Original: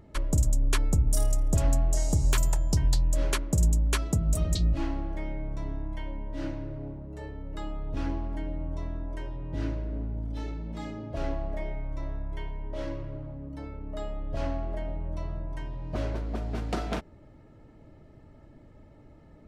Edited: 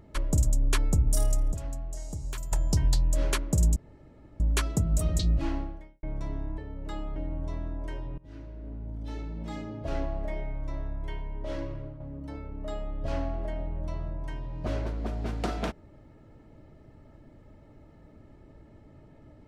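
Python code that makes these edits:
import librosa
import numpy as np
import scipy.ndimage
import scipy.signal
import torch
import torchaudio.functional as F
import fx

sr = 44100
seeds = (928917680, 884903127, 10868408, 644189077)

y = fx.edit(x, sr, fx.clip_gain(start_s=1.52, length_s=1.0, db=-11.5),
    fx.insert_room_tone(at_s=3.76, length_s=0.64),
    fx.fade_out_span(start_s=4.95, length_s=0.44, curve='qua'),
    fx.cut(start_s=5.94, length_s=1.32),
    fx.cut(start_s=7.84, length_s=0.61),
    fx.fade_in_from(start_s=9.47, length_s=1.23, floor_db=-22.5),
    fx.fade_out_to(start_s=13.0, length_s=0.29, curve='qsin', floor_db=-7.0), tone=tone)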